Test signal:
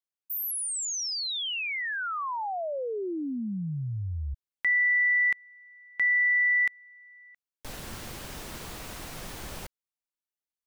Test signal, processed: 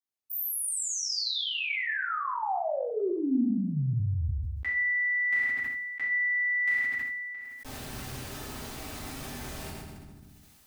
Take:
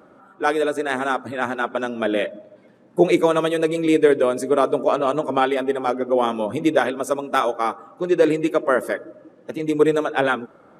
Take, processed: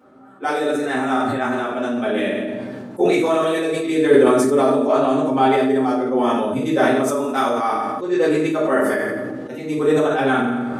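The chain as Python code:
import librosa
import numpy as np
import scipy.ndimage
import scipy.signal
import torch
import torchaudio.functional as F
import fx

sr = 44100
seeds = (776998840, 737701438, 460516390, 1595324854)

y = fx.rev_fdn(x, sr, rt60_s=0.67, lf_ratio=1.4, hf_ratio=0.9, size_ms=23.0, drr_db=-7.5)
y = fx.sustainer(y, sr, db_per_s=22.0)
y = y * librosa.db_to_amplitude(-8.5)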